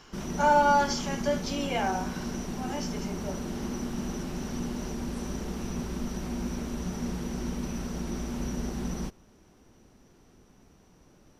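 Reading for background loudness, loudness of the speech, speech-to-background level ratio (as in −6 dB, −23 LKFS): −34.5 LKFS, −27.5 LKFS, 7.0 dB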